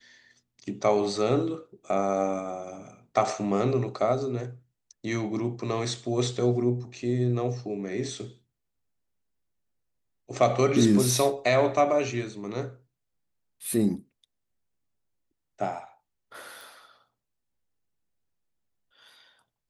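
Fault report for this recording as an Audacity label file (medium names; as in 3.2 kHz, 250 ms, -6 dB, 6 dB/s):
16.610000	16.610000	pop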